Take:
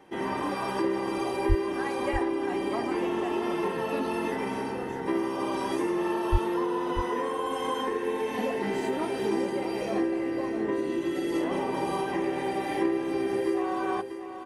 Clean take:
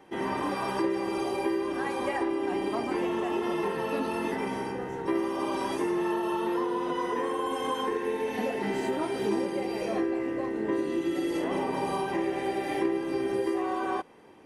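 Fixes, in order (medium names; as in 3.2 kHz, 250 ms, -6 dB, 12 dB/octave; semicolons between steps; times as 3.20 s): 1.48–1.60 s: high-pass 140 Hz 24 dB/octave; 6.31–6.43 s: high-pass 140 Hz 24 dB/octave; inverse comb 639 ms -9.5 dB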